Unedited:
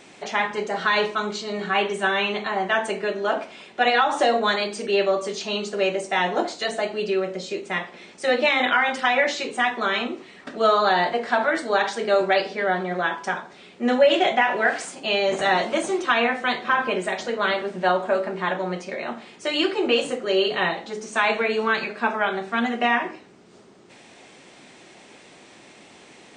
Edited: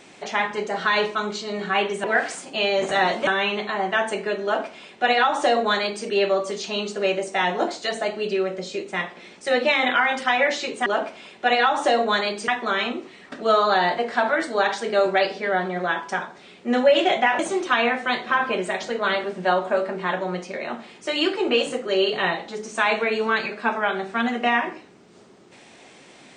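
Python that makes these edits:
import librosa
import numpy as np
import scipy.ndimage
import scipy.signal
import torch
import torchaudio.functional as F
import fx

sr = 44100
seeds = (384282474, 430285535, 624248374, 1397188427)

y = fx.edit(x, sr, fx.duplicate(start_s=3.21, length_s=1.62, to_s=9.63),
    fx.move(start_s=14.54, length_s=1.23, to_s=2.04), tone=tone)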